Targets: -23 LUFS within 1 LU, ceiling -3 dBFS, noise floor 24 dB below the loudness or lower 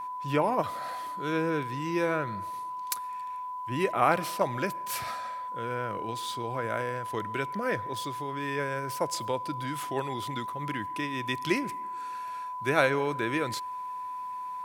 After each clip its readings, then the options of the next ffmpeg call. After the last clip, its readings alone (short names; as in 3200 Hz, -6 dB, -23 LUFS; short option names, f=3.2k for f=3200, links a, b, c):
steady tone 1000 Hz; tone level -34 dBFS; loudness -31.0 LUFS; peak -8.0 dBFS; loudness target -23.0 LUFS
-> -af "bandreject=f=1k:w=30"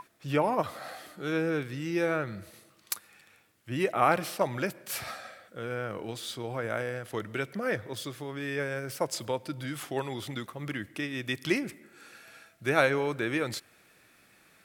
steady tone none; loudness -32.0 LUFS; peak -8.5 dBFS; loudness target -23.0 LUFS
-> -af "volume=9dB,alimiter=limit=-3dB:level=0:latency=1"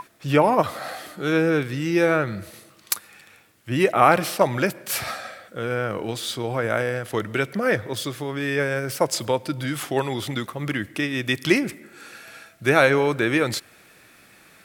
loudness -23.0 LUFS; peak -3.0 dBFS; noise floor -53 dBFS